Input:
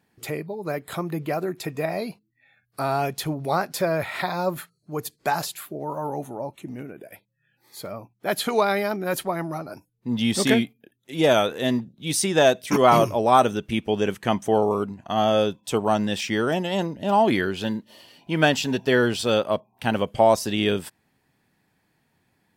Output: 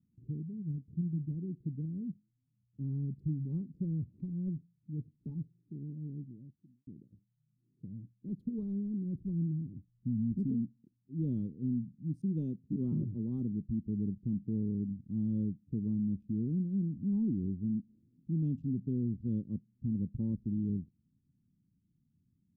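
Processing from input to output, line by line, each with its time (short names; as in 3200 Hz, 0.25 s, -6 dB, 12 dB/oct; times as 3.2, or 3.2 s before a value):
0.52–1.3 spectral whitening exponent 0.3
5.92–6.87 studio fade out
9.15–10.32 low shelf 120 Hz +11 dB
11.92–13.64 HPF 99 Hz 6 dB/oct
whole clip: Wiener smoothing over 41 samples; inverse Chebyshev low-pass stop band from 630 Hz, stop band 50 dB; limiter -24.5 dBFS; gain -1.5 dB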